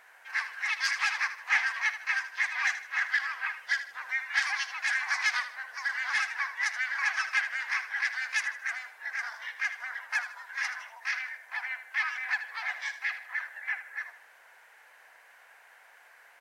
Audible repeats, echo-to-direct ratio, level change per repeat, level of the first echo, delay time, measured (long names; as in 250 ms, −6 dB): 3, −11.0 dB, −8.5 dB, −11.5 dB, 78 ms